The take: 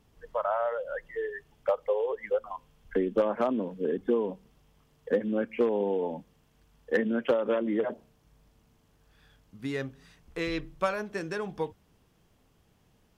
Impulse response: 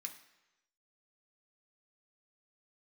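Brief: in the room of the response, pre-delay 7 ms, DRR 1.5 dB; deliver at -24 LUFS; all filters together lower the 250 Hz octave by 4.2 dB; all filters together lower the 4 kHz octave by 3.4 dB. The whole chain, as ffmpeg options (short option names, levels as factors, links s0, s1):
-filter_complex "[0:a]equalizer=f=250:t=o:g=-5.5,equalizer=f=4000:t=o:g=-4.5,asplit=2[s0][s1];[1:a]atrim=start_sample=2205,adelay=7[s2];[s1][s2]afir=irnorm=-1:irlink=0,volume=1.26[s3];[s0][s3]amix=inputs=2:normalize=0,volume=2.11"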